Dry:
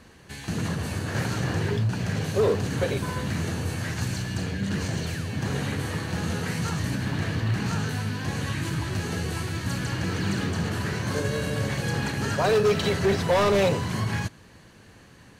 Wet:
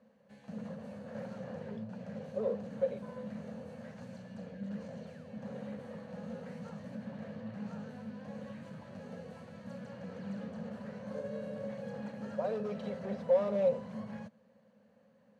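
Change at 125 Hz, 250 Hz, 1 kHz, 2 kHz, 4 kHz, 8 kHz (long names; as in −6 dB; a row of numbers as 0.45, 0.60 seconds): −21.0 dB, −11.5 dB, −17.0 dB, −23.0 dB, −27.0 dB, below −30 dB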